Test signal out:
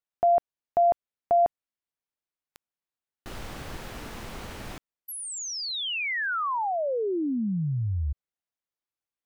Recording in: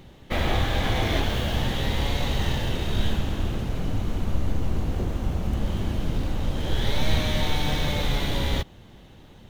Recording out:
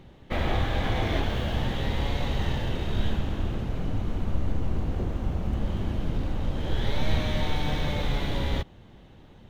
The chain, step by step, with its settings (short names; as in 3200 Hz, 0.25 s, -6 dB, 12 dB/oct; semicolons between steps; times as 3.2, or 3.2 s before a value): high shelf 4400 Hz -10.5 dB; gain -2 dB